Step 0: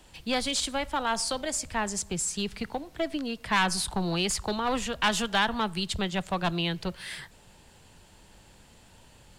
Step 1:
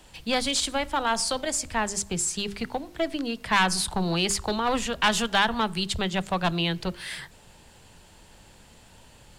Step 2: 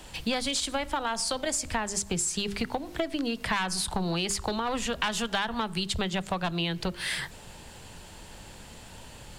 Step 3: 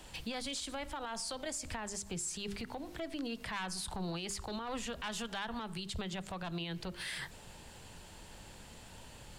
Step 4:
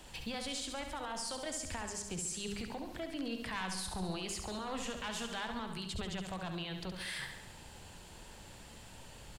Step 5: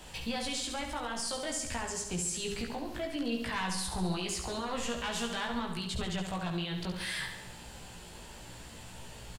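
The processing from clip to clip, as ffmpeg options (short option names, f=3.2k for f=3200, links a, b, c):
-af "bandreject=f=50:t=h:w=6,bandreject=f=100:t=h:w=6,bandreject=f=150:t=h:w=6,bandreject=f=200:t=h:w=6,bandreject=f=250:t=h:w=6,bandreject=f=300:t=h:w=6,bandreject=f=350:t=h:w=6,bandreject=f=400:t=h:w=6,volume=3dB"
-af "acompressor=threshold=-32dB:ratio=10,volume=6dB"
-af "alimiter=level_in=1.5dB:limit=-24dB:level=0:latency=1:release=51,volume=-1.5dB,volume=-6dB"
-af "aecho=1:1:69|138|207|276|345|414|483:0.447|0.259|0.15|0.0872|0.0505|0.0293|0.017,volume=-1dB"
-filter_complex "[0:a]asplit=2[a][b];[b]adelay=17,volume=-3dB[c];[a][c]amix=inputs=2:normalize=0,volume=3dB"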